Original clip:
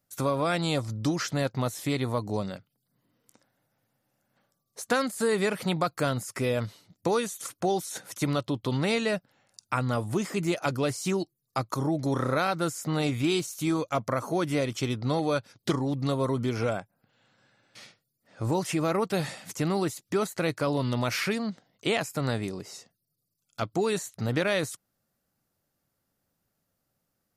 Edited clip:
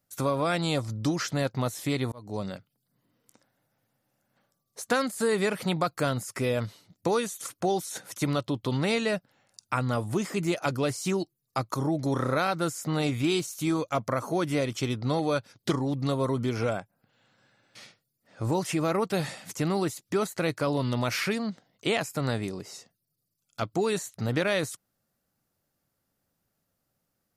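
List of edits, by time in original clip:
0:02.12–0:02.48: fade in

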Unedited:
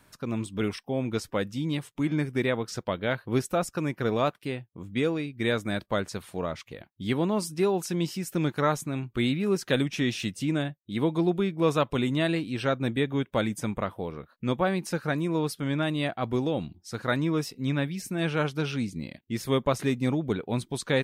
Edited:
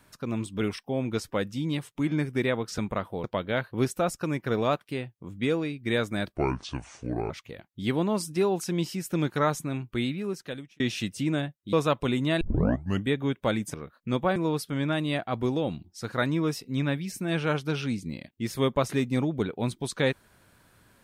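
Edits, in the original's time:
0:05.90–0:06.52: play speed 66%
0:08.96–0:10.02: fade out
0:10.95–0:11.63: remove
0:12.31: tape start 0.68 s
0:13.64–0:14.10: move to 0:02.78
0:14.72–0:15.26: remove

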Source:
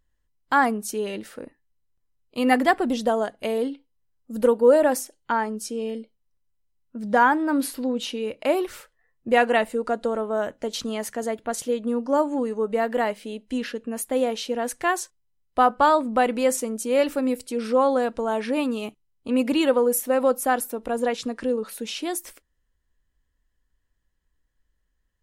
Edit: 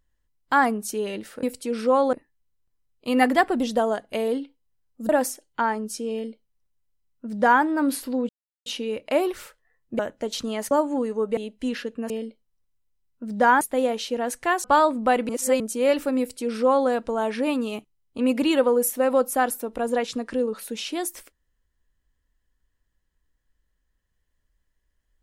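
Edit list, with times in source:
0:04.39–0:04.80: remove
0:05.83–0:07.34: duplicate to 0:13.99
0:08.00: splice in silence 0.37 s
0:09.33–0:10.40: remove
0:11.12–0:12.12: remove
0:12.78–0:13.26: remove
0:15.02–0:15.74: remove
0:16.39–0:16.70: reverse
0:17.29–0:17.99: duplicate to 0:01.43

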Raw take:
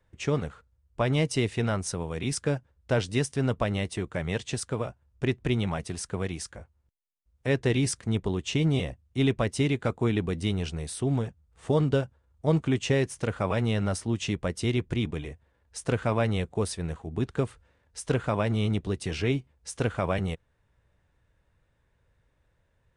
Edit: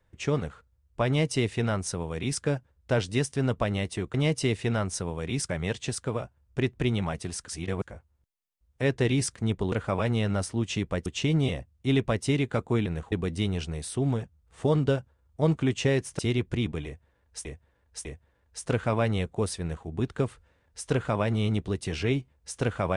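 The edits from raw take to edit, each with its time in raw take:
0:01.07–0:02.42: duplicate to 0:04.14
0:06.13–0:06.47: reverse
0:13.24–0:14.58: move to 0:08.37
0:15.24–0:15.84: repeat, 3 plays
0:16.79–0:17.05: duplicate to 0:10.17

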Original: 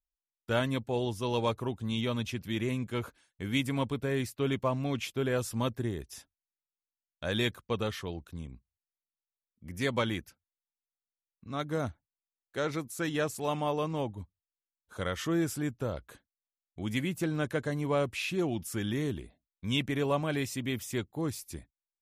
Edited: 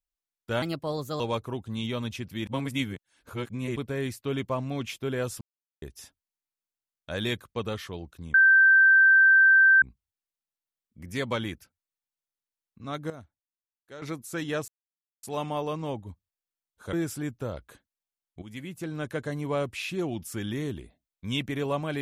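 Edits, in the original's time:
0:00.62–0:01.34: play speed 124%
0:02.61–0:03.90: reverse
0:05.55–0:05.96: silence
0:08.48: insert tone 1,560 Hz −14 dBFS 1.48 s
0:11.76–0:12.68: clip gain −12 dB
0:13.34: splice in silence 0.55 s
0:15.04–0:15.33: remove
0:16.82–0:17.64: fade in, from −12.5 dB

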